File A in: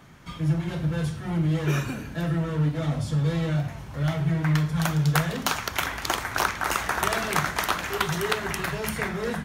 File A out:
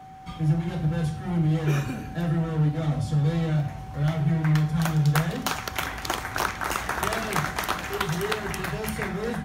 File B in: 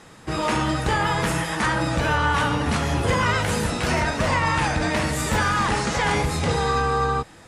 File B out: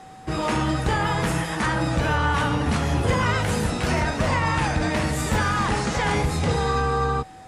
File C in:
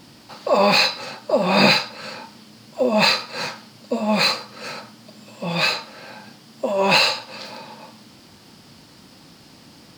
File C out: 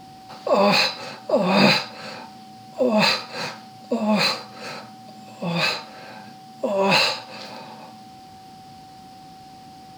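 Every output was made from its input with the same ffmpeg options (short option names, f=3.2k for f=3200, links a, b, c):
-af "lowshelf=f=430:g=4,aeval=exprs='val(0)+0.01*sin(2*PI*760*n/s)':c=same,volume=-2.5dB"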